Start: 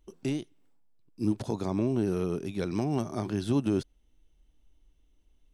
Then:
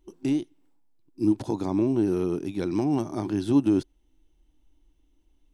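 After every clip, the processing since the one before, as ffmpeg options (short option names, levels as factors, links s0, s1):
-af "superequalizer=6b=2.51:9b=1.58"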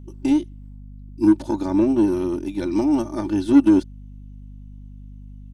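-af "aecho=1:1:3.4:0.97,aeval=exprs='0.501*(cos(1*acos(clip(val(0)/0.501,-1,1)))-cos(1*PI/2))+0.0224*(cos(7*acos(clip(val(0)/0.501,-1,1)))-cos(7*PI/2))':c=same,aeval=exprs='val(0)+0.01*(sin(2*PI*50*n/s)+sin(2*PI*2*50*n/s)/2+sin(2*PI*3*50*n/s)/3+sin(2*PI*4*50*n/s)/4+sin(2*PI*5*50*n/s)/5)':c=same,volume=1.26"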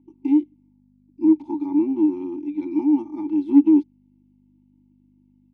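-filter_complex "[0:a]asplit=3[s0][s1][s2];[s0]bandpass=f=300:t=q:w=8,volume=1[s3];[s1]bandpass=f=870:t=q:w=8,volume=0.501[s4];[s2]bandpass=f=2240:t=q:w=8,volume=0.355[s5];[s3][s4][s5]amix=inputs=3:normalize=0,volume=1.33"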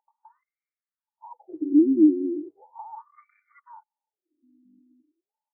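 -af "afftfilt=real='re*between(b*sr/1024,300*pow(1700/300,0.5+0.5*sin(2*PI*0.37*pts/sr))/1.41,300*pow(1700/300,0.5+0.5*sin(2*PI*0.37*pts/sr))*1.41)':imag='im*between(b*sr/1024,300*pow(1700/300,0.5+0.5*sin(2*PI*0.37*pts/sr))/1.41,300*pow(1700/300,0.5+0.5*sin(2*PI*0.37*pts/sr))*1.41)':win_size=1024:overlap=0.75,volume=1.33"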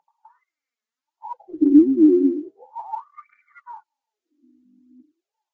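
-af "aphaser=in_gain=1:out_gain=1:delay=4.8:decay=0.63:speed=0.6:type=triangular,volume=1.88" -ar 16000 -c:a libvorbis -b:a 64k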